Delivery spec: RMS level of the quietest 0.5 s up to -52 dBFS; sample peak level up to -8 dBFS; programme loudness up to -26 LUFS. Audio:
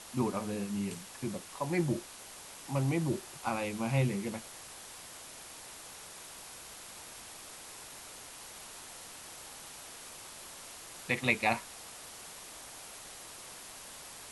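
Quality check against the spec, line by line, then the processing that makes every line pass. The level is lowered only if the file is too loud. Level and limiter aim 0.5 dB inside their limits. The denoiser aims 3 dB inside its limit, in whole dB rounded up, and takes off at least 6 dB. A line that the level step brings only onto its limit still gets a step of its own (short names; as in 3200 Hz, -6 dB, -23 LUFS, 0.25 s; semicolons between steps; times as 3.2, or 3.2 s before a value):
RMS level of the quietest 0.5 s -49 dBFS: fail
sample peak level -12.5 dBFS: OK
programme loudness -38.0 LUFS: OK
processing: denoiser 6 dB, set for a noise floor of -49 dBFS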